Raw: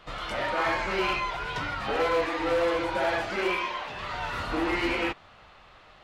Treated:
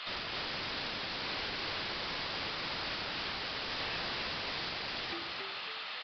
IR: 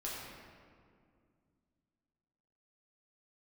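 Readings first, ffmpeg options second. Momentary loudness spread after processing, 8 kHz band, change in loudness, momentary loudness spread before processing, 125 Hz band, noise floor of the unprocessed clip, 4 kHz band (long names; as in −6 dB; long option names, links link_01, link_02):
2 LU, −9.5 dB, −8.0 dB, 7 LU, −8.0 dB, −54 dBFS, +1.5 dB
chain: -filter_complex "[0:a]aderivative,bandreject=frequency=112.5:width_type=h:width=4,bandreject=frequency=225:width_type=h:width=4,bandreject=frequency=337.5:width_type=h:width=4,bandreject=frequency=450:width_type=h:width=4,bandreject=frequency=562.5:width_type=h:width=4,bandreject=frequency=675:width_type=h:width=4,bandreject=frequency=787.5:width_type=h:width=4,bandreject=frequency=900:width_type=h:width=4,bandreject=frequency=1012.5:width_type=h:width=4,bandreject=frequency=1125:width_type=h:width=4,bandreject=frequency=1237.5:width_type=h:width=4,bandreject=frequency=1350:width_type=h:width=4,bandreject=frequency=1462.5:width_type=h:width=4,bandreject=frequency=1575:width_type=h:width=4,alimiter=level_in=8.5dB:limit=-24dB:level=0:latency=1:release=336,volume=-8.5dB,acontrast=68,aeval=exprs='0.0224*sin(PI/2*4.47*val(0)/0.0224)':channel_layout=same,asplit=8[link_01][link_02][link_03][link_04][link_05][link_06][link_07][link_08];[link_02]adelay=274,afreqshift=52,volume=-4.5dB[link_09];[link_03]adelay=548,afreqshift=104,volume=-9.7dB[link_10];[link_04]adelay=822,afreqshift=156,volume=-14.9dB[link_11];[link_05]adelay=1096,afreqshift=208,volume=-20.1dB[link_12];[link_06]adelay=1370,afreqshift=260,volume=-25.3dB[link_13];[link_07]adelay=1644,afreqshift=312,volume=-30.5dB[link_14];[link_08]adelay=1918,afreqshift=364,volume=-35.7dB[link_15];[link_01][link_09][link_10][link_11][link_12][link_13][link_14][link_15]amix=inputs=8:normalize=0,aresample=11025,aresample=44100"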